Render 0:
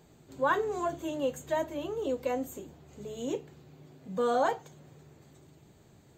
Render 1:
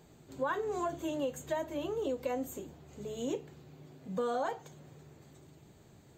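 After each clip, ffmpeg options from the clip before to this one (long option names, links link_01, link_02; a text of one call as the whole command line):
ffmpeg -i in.wav -af "acompressor=threshold=-30dB:ratio=6" out.wav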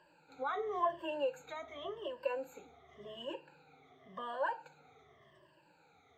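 ffmpeg -i in.wav -filter_complex "[0:a]afftfilt=real='re*pow(10,21/40*sin(2*PI*(1.3*log(max(b,1)*sr/1024/100)/log(2)-(-0.9)*(pts-256)/sr)))':imag='im*pow(10,21/40*sin(2*PI*(1.3*log(max(b,1)*sr/1024/100)/log(2)-(-0.9)*(pts-256)/sr)))':win_size=1024:overlap=0.75,acrossover=split=550 3600:gain=0.126 1 0.0708[link_01][link_02][link_03];[link_01][link_02][link_03]amix=inputs=3:normalize=0,volume=-2.5dB" out.wav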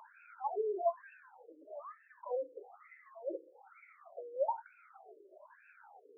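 ffmpeg -i in.wav -filter_complex "[0:a]asplit=2[link_01][link_02];[link_02]acompressor=mode=upward:threshold=-40dB:ratio=2.5,volume=-1dB[link_03];[link_01][link_03]amix=inputs=2:normalize=0,afftfilt=real='re*between(b*sr/1024,390*pow(1900/390,0.5+0.5*sin(2*PI*1.1*pts/sr))/1.41,390*pow(1900/390,0.5+0.5*sin(2*PI*1.1*pts/sr))*1.41)':imag='im*between(b*sr/1024,390*pow(1900/390,0.5+0.5*sin(2*PI*1.1*pts/sr))/1.41,390*pow(1900/390,0.5+0.5*sin(2*PI*1.1*pts/sr))*1.41)':win_size=1024:overlap=0.75,volume=-1.5dB" out.wav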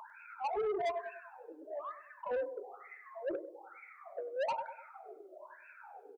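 ffmpeg -i in.wav -filter_complex "[0:a]asplit=2[link_01][link_02];[link_02]aecho=0:1:99|198|297|396:0.224|0.0918|0.0376|0.0154[link_03];[link_01][link_03]amix=inputs=2:normalize=0,asoftclip=type=tanh:threshold=-36.5dB,volume=6dB" out.wav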